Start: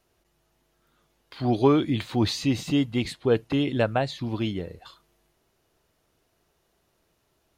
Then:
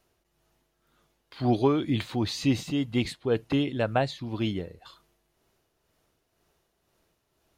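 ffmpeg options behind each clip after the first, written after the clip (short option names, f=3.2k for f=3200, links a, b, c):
-af "tremolo=f=2:d=0.46"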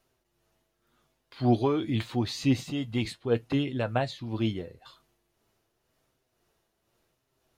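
-af "flanger=delay=7.6:depth=1.6:regen=55:speed=0.82:shape=sinusoidal,volume=2dB"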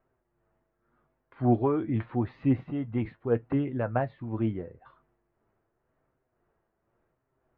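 -af "lowpass=f=1.8k:w=0.5412,lowpass=f=1.8k:w=1.3066"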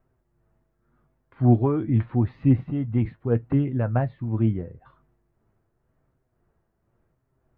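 -af "bass=f=250:g=10,treble=f=4k:g=1"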